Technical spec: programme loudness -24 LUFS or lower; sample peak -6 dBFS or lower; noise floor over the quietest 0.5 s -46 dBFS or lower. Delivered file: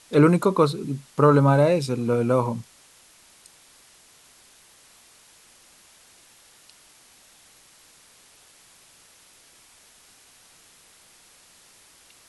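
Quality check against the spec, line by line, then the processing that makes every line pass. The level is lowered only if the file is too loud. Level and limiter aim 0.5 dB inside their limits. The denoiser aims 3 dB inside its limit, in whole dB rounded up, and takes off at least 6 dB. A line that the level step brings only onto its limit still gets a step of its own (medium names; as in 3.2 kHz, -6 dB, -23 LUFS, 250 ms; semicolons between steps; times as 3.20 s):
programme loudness -20.5 LUFS: fail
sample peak -4.0 dBFS: fail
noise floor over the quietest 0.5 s -54 dBFS: pass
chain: trim -4 dB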